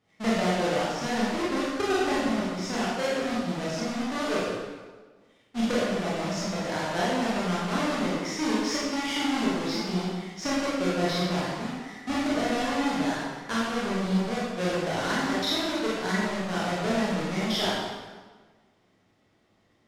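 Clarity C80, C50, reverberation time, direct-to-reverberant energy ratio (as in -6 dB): 0.5 dB, -2.0 dB, 1.4 s, -8.0 dB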